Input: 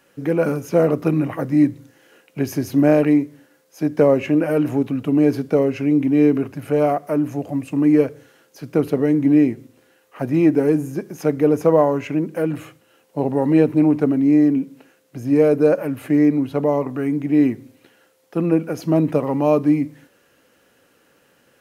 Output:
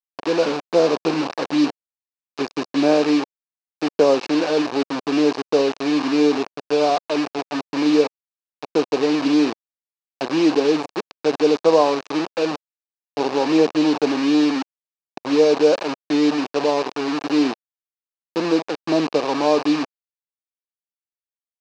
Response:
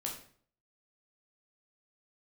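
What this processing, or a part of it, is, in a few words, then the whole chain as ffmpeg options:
hand-held game console: -filter_complex "[0:a]asettb=1/sr,asplit=3[a][b][c];[a]atrim=end=13.304[d];[b]atrim=start=13.3:end=15.19,asetpts=PTS-STARTPTS,afade=t=in:d=0.004:c=qsin,afade=t=out:st=1.886:d=0.004:c=qsin,highpass=52[e];[c]atrim=start=15.186[f];[d][e]acrossfade=d=0.004:c1=hsin:c2=qsin[g];[g][f]acrossfade=d=0.004:c1=qsin:c2=hsin,acrusher=bits=3:mix=0:aa=0.000001,highpass=410,equalizer=f=590:t=q:w=4:g=-5,equalizer=f=1.4k:t=q:w=4:g=-7,equalizer=f=2k:t=q:w=4:g=-10,equalizer=f=3.3k:t=q:w=4:g=-8,lowpass=f=4.8k:w=0.5412,lowpass=f=4.8k:w=1.3066,volume=4dB"

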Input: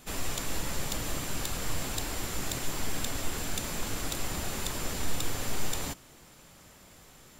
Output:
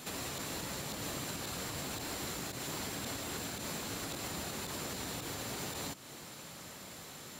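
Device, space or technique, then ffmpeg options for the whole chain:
broadcast voice chain: -af "highpass=110,deesser=0.75,acompressor=threshold=-44dB:ratio=3,equalizer=f=4.1k:t=o:w=0.21:g=5.5,alimiter=level_in=11.5dB:limit=-24dB:level=0:latency=1:release=116,volume=-11.5dB,volume=6dB"

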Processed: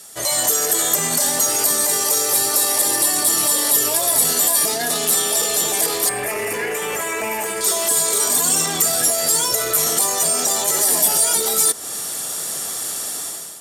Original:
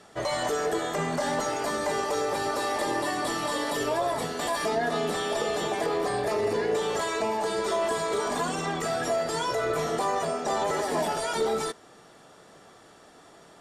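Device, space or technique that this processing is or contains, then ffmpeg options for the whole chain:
FM broadcast chain: -filter_complex "[0:a]highpass=41,dynaudnorm=f=140:g=7:m=15dB,acrossover=split=760|1600[a][b][c];[a]acompressor=threshold=-24dB:ratio=4[d];[b]acompressor=threshold=-32dB:ratio=4[e];[c]acompressor=threshold=-33dB:ratio=4[f];[d][e][f]amix=inputs=3:normalize=0,aemphasis=mode=production:type=75fm,alimiter=limit=-16dB:level=0:latency=1:release=15,asoftclip=type=hard:threshold=-19.5dB,lowpass=f=15k:w=0.5412,lowpass=f=15k:w=1.3066,aemphasis=mode=production:type=75fm,asettb=1/sr,asplit=3[g][h][i];[g]atrim=end=6.094[j];[h]atrim=start=6.09:end=7.61,asetpts=PTS-STARTPTS,afade=t=in:d=0.004:c=qsin,afade=t=out:st=1.516:d=0.004:c=qsin,highshelf=f=3.1k:t=q:w=3:g=-9[k];[i]atrim=start=7.606[l];[j][k]acrossfade=d=0.004:c1=hsin:c2=qsin[m];[m][l]acrossfade=d=0.004:c1=qsin:c2=hsin"

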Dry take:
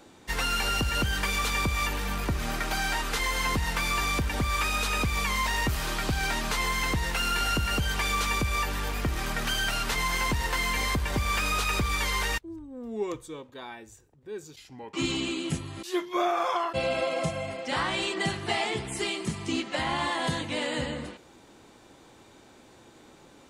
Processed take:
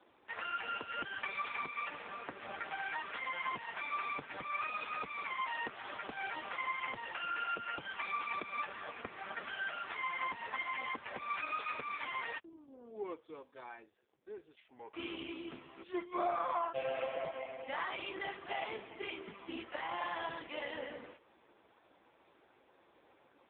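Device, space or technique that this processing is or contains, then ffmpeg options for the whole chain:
telephone: -af "highpass=400,lowpass=3.2k,volume=-5.5dB" -ar 8000 -c:a libopencore_amrnb -b:a 5150

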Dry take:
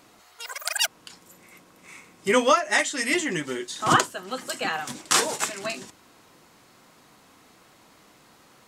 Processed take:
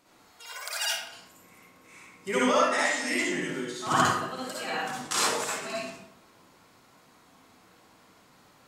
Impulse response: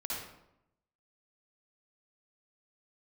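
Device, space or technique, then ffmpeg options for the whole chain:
bathroom: -filter_complex "[1:a]atrim=start_sample=2205[a];[0:a][a]afir=irnorm=-1:irlink=0,volume=-5.5dB"

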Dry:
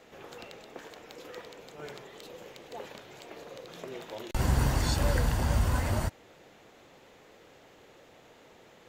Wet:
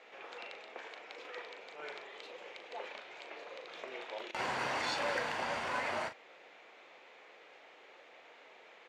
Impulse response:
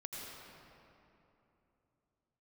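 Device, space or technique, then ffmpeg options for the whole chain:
megaphone: -filter_complex "[0:a]highpass=560,lowpass=3.9k,equalizer=f=2.3k:t=o:w=0.4:g=6,asoftclip=type=hard:threshold=-26dB,asplit=2[a][b];[b]adelay=39,volume=-9dB[c];[a][c]amix=inputs=2:normalize=0"

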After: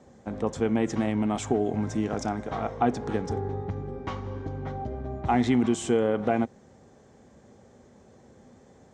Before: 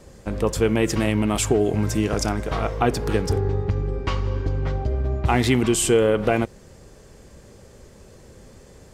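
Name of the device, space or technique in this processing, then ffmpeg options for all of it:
car door speaker: -af "highpass=93,equalizer=f=240:t=q:w=4:g=8,equalizer=f=770:t=q:w=4:g=8,equalizer=f=2.7k:t=q:w=4:g=-7,equalizer=f=4.7k:t=q:w=4:g=-9,lowpass=f=6.8k:w=0.5412,lowpass=f=6.8k:w=1.3066,volume=-7.5dB"

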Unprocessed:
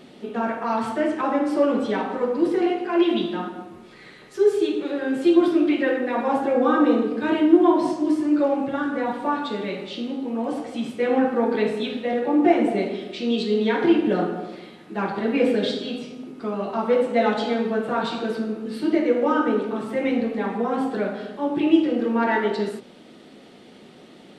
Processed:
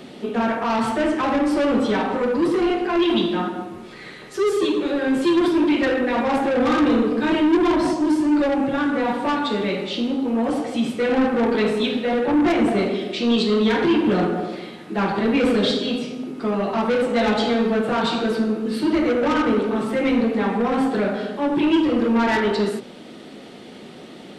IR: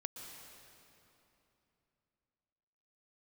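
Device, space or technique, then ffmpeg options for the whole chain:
one-band saturation: -filter_complex "[0:a]acrossover=split=210|2700[a][b][c];[b]asoftclip=type=tanh:threshold=-25.5dB[d];[a][d][c]amix=inputs=3:normalize=0,volume=7dB"

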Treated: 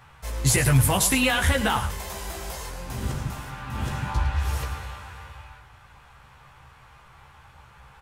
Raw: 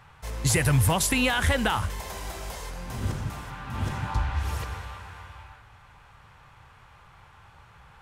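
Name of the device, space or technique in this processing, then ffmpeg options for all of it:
slapback doubling: -filter_complex "[0:a]highshelf=f=8.4k:g=5,asplit=3[a][b][c];[b]adelay=15,volume=-4dB[d];[c]adelay=109,volume=-11dB[e];[a][d][e]amix=inputs=3:normalize=0"

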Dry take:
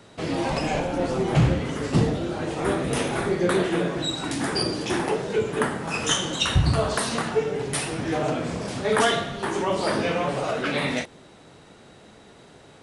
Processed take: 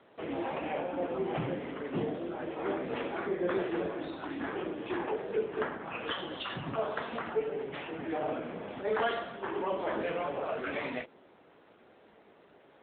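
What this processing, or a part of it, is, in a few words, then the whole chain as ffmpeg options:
telephone: -af "highpass=270,lowpass=3k,asoftclip=type=tanh:threshold=-12dB,volume=-6.5dB" -ar 8000 -c:a libopencore_amrnb -b:a 7950

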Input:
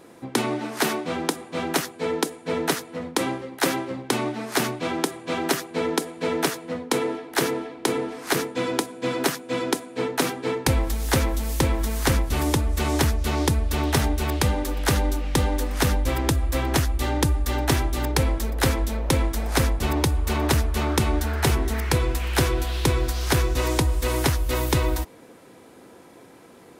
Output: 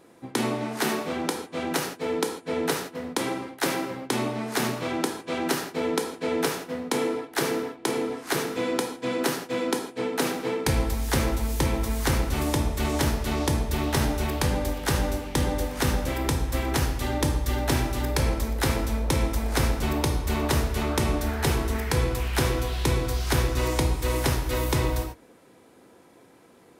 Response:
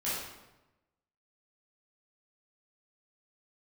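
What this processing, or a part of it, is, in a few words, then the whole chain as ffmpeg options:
keyed gated reverb: -filter_complex "[0:a]asplit=3[a][b][c];[1:a]atrim=start_sample=2205[d];[b][d]afir=irnorm=-1:irlink=0[e];[c]apad=whole_len=1181482[f];[e][f]sidechaingate=range=-33dB:threshold=-36dB:ratio=16:detection=peak,volume=-7dB[g];[a][g]amix=inputs=2:normalize=0,volume=-6dB"

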